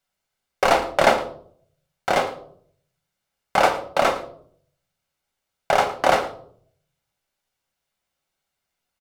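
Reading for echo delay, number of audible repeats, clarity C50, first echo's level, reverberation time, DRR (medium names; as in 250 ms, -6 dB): 111 ms, 1, 11.5 dB, -17.5 dB, 0.60 s, 5.5 dB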